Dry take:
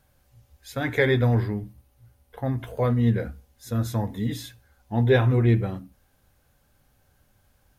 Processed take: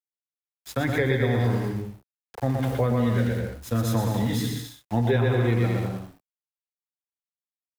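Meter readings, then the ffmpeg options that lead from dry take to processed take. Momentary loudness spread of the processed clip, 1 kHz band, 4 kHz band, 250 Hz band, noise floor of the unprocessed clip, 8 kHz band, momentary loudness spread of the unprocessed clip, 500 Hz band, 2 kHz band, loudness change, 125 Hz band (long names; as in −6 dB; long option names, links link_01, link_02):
10 LU, +2.0 dB, +1.5 dB, +0.5 dB, −65 dBFS, +5.5 dB, 16 LU, −0.5 dB, −1.0 dB, −1.0 dB, −0.5 dB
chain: -filter_complex "[0:a]aeval=exprs='val(0)*gte(abs(val(0)),0.00944)':channel_layout=same,aecho=1:1:120|204|262.8|304|332.8:0.631|0.398|0.251|0.158|0.1,acrossover=split=170|480[link_01][link_02][link_03];[link_01]acompressor=threshold=-31dB:ratio=4[link_04];[link_02]acompressor=threshold=-31dB:ratio=4[link_05];[link_03]acompressor=threshold=-32dB:ratio=4[link_06];[link_04][link_05][link_06]amix=inputs=3:normalize=0,volume=4dB"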